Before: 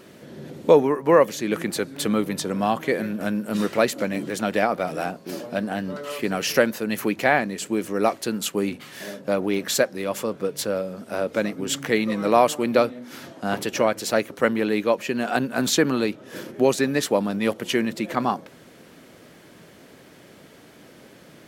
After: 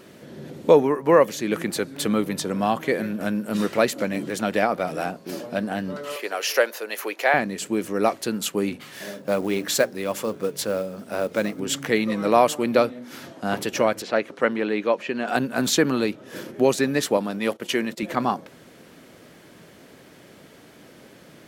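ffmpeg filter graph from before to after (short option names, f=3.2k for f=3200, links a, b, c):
-filter_complex "[0:a]asettb=1/sr,asplit=3[a][b][c];[a]atrim=end=6.164[d];[b]atrim=start=6.16:end=7.34,asetpts=PTS-STARTPTS,afade=t=in:d=0.004:c=qsin,afade=t=out:st=1.176:d=0.004:c=qsin,highpass=f=430:w=0.5412,highpass=f=430:w=1.3066,bandreject=f=8k:w=11[e];[c]atrim=start=7.336[f];[d][e]acrossfade=d=0.004:c1=hsin:c2=qsin[g];[g][f]acrossfade=d=0.004:c1=qsin:c2=hsin,asettb=1/sr,asplit=3[h][i][j];[h]atrim=end=8.844[k];[i]atrim=start=8.84:end=11.6,asetpts=PTS-STARTPTS,afade=t=in:d=0.004:c=qsin,afade=t=out:st=2.756:d=0.004:c=qsin,bandreject=f=60:t=h:w=6,bandreject=f=120:t=h:w=6,bandreject=f=180:t=h:w=6,bandreject=f=240:t=h:w=6,bandreject=f=300:t=h:w=6,bandreject=f=360:t=h:w=6,bandreject=f=420:t=h:w=6,acrusher=bits=6:mode=log:mix=0:aa=0.000001[l];[j]atrim=start=11.596[m];[k][l]acrossfade=d=0.004:c1=hsin:c2=qsin[n];[n][m]acrossfade=d=0.004:c1=qsin:c2=hsin,asettb=1/sr,asplit=3[o][p][q];[o]atrim=end=14.024[r];[p]atrim=start=14.02:end=15.28,asetpts=PTS-STARTPTS,afade=t=in:d=0.004:c=qsin,afade=t=out:st=1.256:d=0.004:c=qsin,lowpass=8.1k,acrossover=split=3900[s][t];[t]acompressor=threshold=-53dB:ratio=4:attack=1:release=60[u];[s][u]amix=inputs=2:normalize=0,equalizer=f=70:t=o:w=2:g=-13.5[v];[q]atrim=start=15.276[w];[r][v]acrossfade=d=0.004:c1=hsin:c2=qsin[x];[x][w]acrossfade=d=0.004:c1=qsin:c2=hsin,asettb=1/sr,asplit=3[y][z][aa];[y]atrim=end=17.174[ab];[z]atrim=start=17.17:end=18.03,asetpts=PTS-STARTPTS,afade=t=in:d=0.004:c=qsin,afade=t=out:st=0.856:d=0.004:c=qsin,highpass=f=240:p=1,agate=range=-16dB:threshold=-38dB:ratio=16:release=100:detection=peak[ac];[aa]atrim=start=18.026[ad];[ab][ac]acrossfade=d=0.004:c1=hsin:c2=qsin[ae];[ae][ad]acrossfade=d=0.004:c1=qsin:c2=hsin"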